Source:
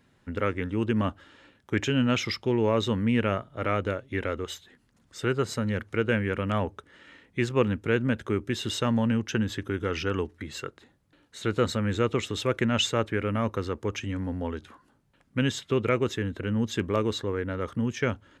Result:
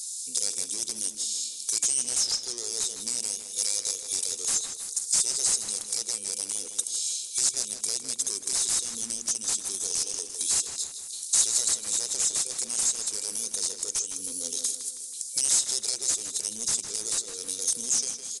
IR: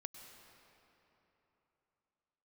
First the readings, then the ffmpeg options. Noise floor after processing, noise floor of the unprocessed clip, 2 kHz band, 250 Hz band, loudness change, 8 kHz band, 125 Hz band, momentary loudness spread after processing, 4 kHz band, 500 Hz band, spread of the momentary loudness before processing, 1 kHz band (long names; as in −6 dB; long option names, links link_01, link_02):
−40 dBFS, −66 dBFS, −13.0 dB, −22.5 dB, +2.0 dB, +21.5 dB, below −25 dB, 7 LU, +4.5 dB, −18.5 dB, 9 LU, −15.0 dB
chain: -filter_complex "[0:a]highpass=frequency=260:poles=1,aderivative,afftfilt=real='re*(1-between(b*sr/4096,520,2300))':imag='im*(1-between(b*sr/4096,520,2300))':win_size=4096:overlap=0.75,dynaudnorm=framelen=150:gausssize=11:maxgain=3dB,alimiter=level_in=3.5dB:limit=-24dB:level=0:latency=1:release=240,volume=-3.5dB,acompressor=threshold=-54dB:ratio=3,aeval=exprs='0.02*sin(PI/2*8.91*val(0)/0.02)':channel_layout=same,aexciter=amount=15.1:drive=9.7:freq=4500,asoftclip=type=tanh:threshold=-4dB,asplit=2[link_01][link_02];[link_02]adelay=159,lowpass=frequency=4300:poles=1,volume=-6.5dB,asplit=2[link_03][link_04];[link_04]adelay=159,lowpass=frequency=4300:poles=1,volume=0.51,asplit=2[link_05][link_06];[link_06]adelay=159,lowpass=frequency=4300:poles=1,volume=0.51,asplit=2[link_07][link_08];[link_08]adelay=159,lowpass=frequency=4300:poles=1,volume=0.51,asplit=2[link_09][link_10];[link_10]adelay=159,lowpass=frequency=4300:poles=1,volume=0.51,asplit=2[link_11][link_12];[link_12]adelay=159,lowpass=frequency=4300:poles=1,volume=0.51[link_13];[link_03][link_05][link_07][link_09][link_11][link_13]amix=inputs=6:normalize=0[link_14];[link_01][link_14]amix=inputs=2:normalize=0,aresample=22050,aresample=44100,adynamicequalizer=threshold=0.0224:dfrequency=1900:dqfactor=0.7:tfrequency=1900:tqfactor=0.7:attack=5:release=100:ratio=0.375:range=2.5:mode=cutabove:tftype=highshelf,volume=-7.5dB"